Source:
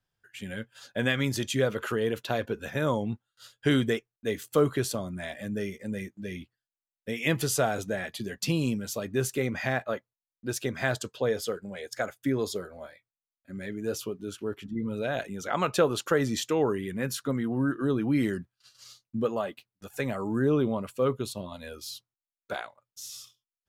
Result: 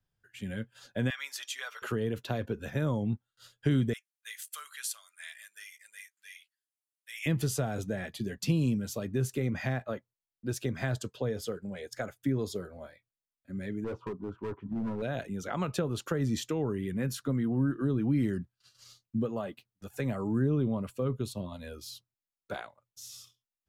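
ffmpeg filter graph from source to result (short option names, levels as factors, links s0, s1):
-filter_complex "[0:a]asettb=1/sr,asplit=3[s0][s1][s2];[s0]atrim=end=1.104[s3];[s1]atrim=start=1.1:end=1.82,asetpts=PTS-STARTPTS,afade=t=in:d=0.004:c=qsin,afade=t=out:st=0.716:d=0.004:c=qsin,highpass=f=1000:w=0.5412,highpass=f=1000:w=1.3066,aecho=1:1:6.7:0.42,atrim=end_sample=31752,aeval=exprs='val(0)+0.00112*sin(2*PI*5600*n/s)':c=same[s4];[s2]atrim=start=1.816[s5];[s3][s4]acrossfade=d=0.004:c1=hsin:c2=qsin[s6];[s6][s5]acrossfade=d=0.004:c1=qsin:c2=hsin,asettb=1/sr,asplit=3[s7][s8][s9];[s7]atrim=end=3.934[s10];[s8]atrim=start=3.93:end=7.26,asetpts=PTS-STARTPTS,afade=t=in:d=0.004:c=qsin,afade=t=out:st=3.326:d=0.004:c=qsin,highpass=f=1500:w=0.5412,highpass=f=1500:w=1.3066,equalizer=f=10000:t=o:w=0.98:g=9[s11];[s9]atrim=start=7.256[s12];[s10][s11]acrossfade=d=0.004:c1=hsin:c2=qsin[s13];[s13][s12]acrossfade=d=0.004:c1=qsin:c2=hsin,asettb=1/sr,asplit=3[s14][s15][s16];[s14]atrim=end=13.844[s17];[s15]atrim=start=13.84:end=15.02,asetpts=PTS-STARTPTS,afade=t=in:d=0.004:c=qsin,afade=t=out:st=1.176:d=0.004:c=qsin,lowpass=f=1000:t=q:w=10,volume=33.5,asoftclip=hard,volume=0.0299[s18];[s16]atrim=start=15.016[s19];[s17][s18]acrossfade=d=0.004:c1=hsin:c2=qsin[s20];[s20][s19]acrossfade=d=0.004:c1=qsin:c2=hsin,lowshelf=f=310:g=9,acrossover=split=230[s21][s22];[s22]acompressor=threshold=0.0501:ratio=6[s23];[s21][s23]amix=inputs=2:normalize=0,volume=0.562"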